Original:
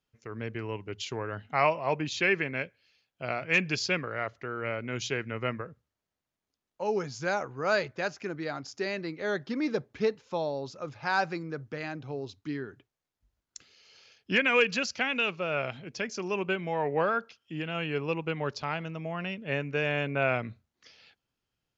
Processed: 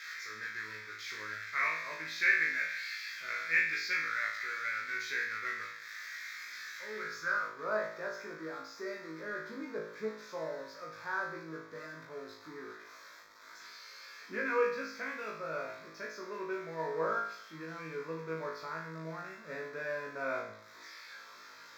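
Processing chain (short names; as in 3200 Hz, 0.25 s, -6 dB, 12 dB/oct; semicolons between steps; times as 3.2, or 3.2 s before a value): switching spikes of -18.5 dBFS; high shelf 3300 Hz -9 dB; fixed phaser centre 2900 Hz, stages 6; on a send: flutter echo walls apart 3.2 m, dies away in 0.59 s; on the sum: band-pass sweep 1900 Hz -> 820 Hz, 6.99–7.65; gain +2.5 dB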